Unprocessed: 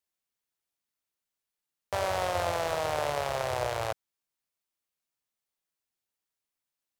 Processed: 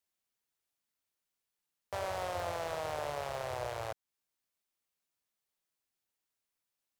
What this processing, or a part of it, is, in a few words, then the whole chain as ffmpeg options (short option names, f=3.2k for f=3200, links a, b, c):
clipper into limiter: -af "asoftclip=type=hard:threshold=-20.5dB,alimiter=level_in=3.5dB:limit=-24dB:level=0:latency=1:release=275,volume=-3.5dB"